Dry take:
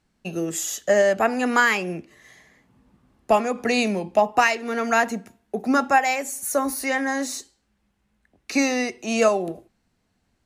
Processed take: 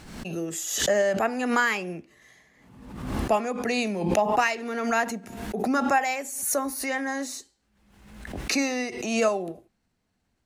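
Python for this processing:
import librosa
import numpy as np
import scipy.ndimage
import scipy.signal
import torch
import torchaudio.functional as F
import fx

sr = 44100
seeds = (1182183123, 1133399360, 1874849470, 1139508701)

y = fx.pre_swell(x, sr, db_per_s=54.0)
y = y * librosa.db_to_amplitude(-5.0)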